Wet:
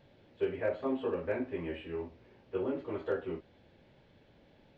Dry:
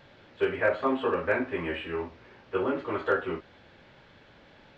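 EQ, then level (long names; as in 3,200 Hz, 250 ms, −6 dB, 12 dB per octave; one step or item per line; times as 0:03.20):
parametric band 1,300 Hz −10 dB 1.2 octaves
high-shelf EQ 2,100 Hz −7.5 dB
−4.0 dB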